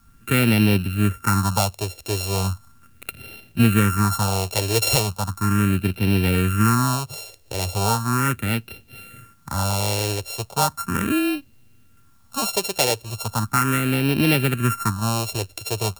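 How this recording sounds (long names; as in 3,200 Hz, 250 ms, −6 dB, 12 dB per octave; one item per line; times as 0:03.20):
a buzz of ramps at a fixed pitch in blocks of 32 samples
phaser sweep stages 4, 0.37 Hz, lowest notch 210–1,200 Hz
a quantiser's noise floor 12 bits, dither triangular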